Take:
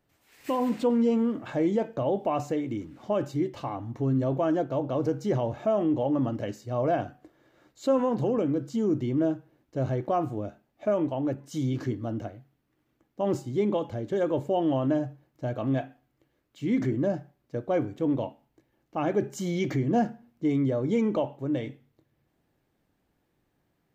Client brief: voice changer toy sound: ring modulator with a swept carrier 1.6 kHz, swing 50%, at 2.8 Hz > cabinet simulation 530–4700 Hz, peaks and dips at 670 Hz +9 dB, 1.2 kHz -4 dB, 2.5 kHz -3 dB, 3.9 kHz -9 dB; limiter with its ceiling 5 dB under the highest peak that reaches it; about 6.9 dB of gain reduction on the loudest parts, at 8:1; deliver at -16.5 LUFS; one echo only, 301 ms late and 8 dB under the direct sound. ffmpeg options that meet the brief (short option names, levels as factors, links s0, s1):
-af "acompressor=threshold=0.0447:ratio=8,alimiter=limit=0.0631:level=0:latency=1,aecho=1:1:301:0.398,aeval=exprs='val(0)*sin(2*PI*1600*n/s+1600*0.5/2.8*sin(2*PI*2.8*n/s))':c=same,highpass=530,equalizer=f=670:t=q:w=4:g=9,equalizer=f=1200:t=q:w=4:g=-4,equalizer=f=2500:t=q:w=4:g=-3,equalizer=f=3900:t=q:w=4:g=-9,lowpass=f=4700:w=0.5412,lowpass=f=4700:w=1.3066,volume=8.91"